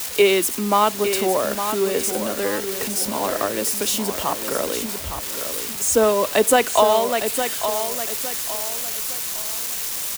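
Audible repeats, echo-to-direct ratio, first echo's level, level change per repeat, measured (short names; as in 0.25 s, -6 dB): 3, -8.0 dB, -8.5 dB, -9.0 dB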